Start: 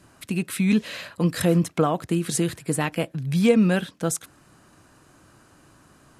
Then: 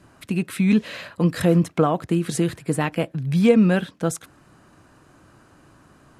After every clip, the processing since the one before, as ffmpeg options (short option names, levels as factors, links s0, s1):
-af "highshelf=f=3700:g=-8,volume=1.33"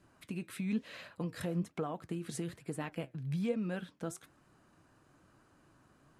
-af "acompressor=threshold=0.0631:ratio=2,flanger=delay=2.1:depth=7.2:regen=76:speed=1.1:shape=triangular,volume=0.376"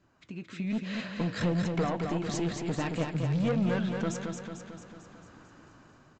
-af "dynaudnorm=f=320:g=5:m=4.22,aresample=16000,asoftclip=type=tanh:threshold=0.0708,aresample=44100,aecho=1:1:223|446|669|892|1115|1338|1561|1784:0.562|0.326|0.189|0.11|0.0636|0.0369|0.0214|0.0124,volume=0.794"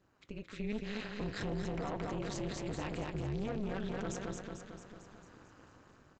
-af "tremolo=f=210:d=1,alimiter=level_in=1.88:limit=0.0631:level=0:latency=1:release=12,volume=0.531"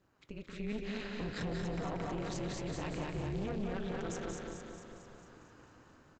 -af "aecho=1:1:183|366|549|732:0.531|0.191|0.0688|0.0248,volume=0.891"